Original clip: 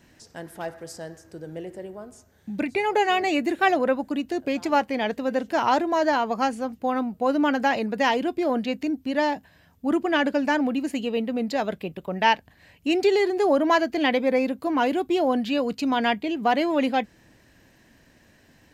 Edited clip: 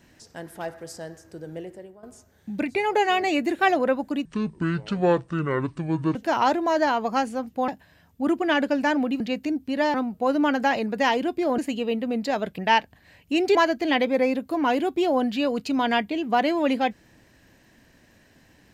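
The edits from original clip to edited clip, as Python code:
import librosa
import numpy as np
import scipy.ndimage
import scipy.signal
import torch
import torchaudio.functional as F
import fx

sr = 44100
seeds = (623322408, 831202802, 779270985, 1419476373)

y = fx.edit(x, sr, fx.fade_out_to(start_s=1.57, length_s=0.46, floor_db=-15.0),
    fx.speed_span(start_s=4.25, length_s=1.16, speed=0.61),
    fx.swap(start_s=6.94, length_s=1.64, other_s=9.32, other_length_s=1.52),
    fx.cut(start_s=11.84, length_s=0.29),
    fx.cut(start_s=13.1, length_s=0.58), tone=tone)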